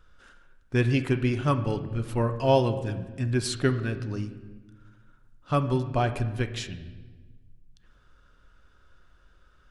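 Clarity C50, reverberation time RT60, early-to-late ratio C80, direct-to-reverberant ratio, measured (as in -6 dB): 11.5 dB, 1.3 s, 13.0 dB, 8.0 dB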